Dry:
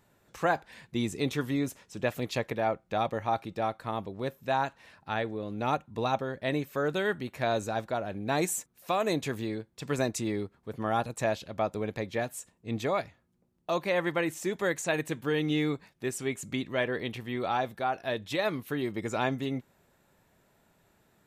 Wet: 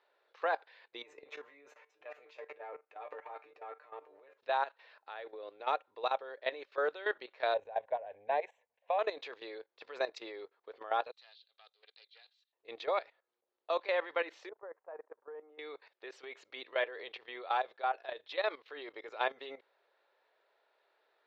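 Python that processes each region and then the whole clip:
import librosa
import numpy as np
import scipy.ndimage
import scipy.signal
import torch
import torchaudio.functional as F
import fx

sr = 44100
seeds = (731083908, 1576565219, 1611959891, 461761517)

y = fx.chain(x, sr, fx.band_shelf(hz=4100.0, db=-13.0, octaves=1.0),
    fx.transient(attack_db=-11, sustain_db=11),
    fx.comb_fb(f0_hz=150.0, decay_s=0.17, harmonics='all', damping=0.0, mix_pct=90), at=(1.02, 4.38))
y = fx.chain(y, sr, fx.highpass(hz=42.0, slope=12),
    fx.tilt_eq(slope=-4.0),
    fx.fixed_phaser(hz=1300.0, stages=6), at=(7.54, 8.99))
y = fx.chain(y, sr, fx.bandpass_q(hz=4000.0, q=4.7),
    fx.comb(ms=2.5, depth=0.44),
    fx.doppler_dist(depth_ms=0.16), at=(11.11, 12.53))
y = fx.chain(y, sr, fx.lowpass(hz=1100.0, slope=24),
    fx.peak_eq(hz=160.0, db=-14.0, octaves=2.1),
    fx.level_steps(step_db=21), at=(14.49, 15.59))
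y = scipy.signal.sosfilt(scipy.signal.ellip(3, 1.0, 40, [450.0, 4300.0], 'bandpass', fs=sr, output='sos'), y)
y = fx.level_steps(y, sr, step_db=15)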